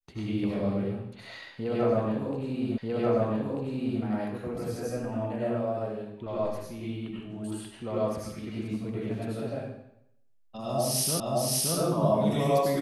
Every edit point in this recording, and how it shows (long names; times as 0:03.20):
0:02.78: the same again, the last 1.24 s
0:11.20: the same again, the last 0.57 s